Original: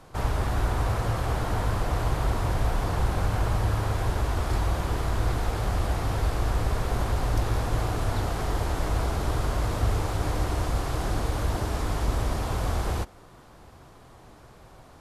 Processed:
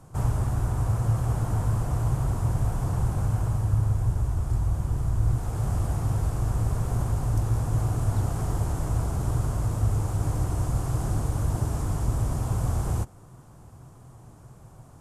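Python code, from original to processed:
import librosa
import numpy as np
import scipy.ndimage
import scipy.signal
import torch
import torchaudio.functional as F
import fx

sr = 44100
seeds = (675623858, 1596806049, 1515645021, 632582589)

y = fx.low_shelf(x, sr, hz=120.0, db=8.5, at=(3.71, 5.36))
y = fx.rider(y, sr, range_db=10, speed_s=0.5)
y = fx.graphic_eq(y, sr, hz=(125, 500, 2000, 4000, 8000), db=(11, -3, -7, -10, 7))
y = y * librosa.db_to_amplitude(-4.5)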